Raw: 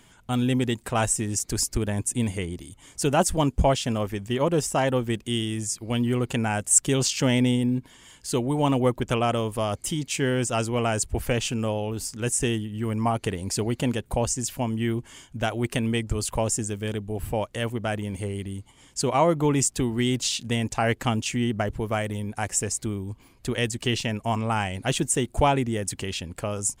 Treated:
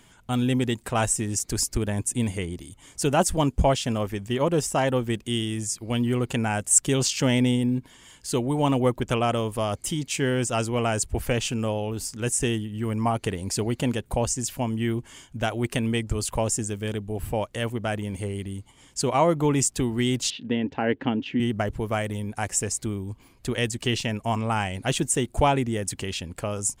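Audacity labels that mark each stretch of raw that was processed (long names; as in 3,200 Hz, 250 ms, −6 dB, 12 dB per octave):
20.300000	21.400000	loudspeaker in its box 110–3,000 Hz, peaks and dips at 110 Hz −8 dB, 280 Hz +9 dB, 440 Hz +3 dB, 700 Hz −5 dB, 1,200 Hz −9 dB, 2,300 Hz −6 dB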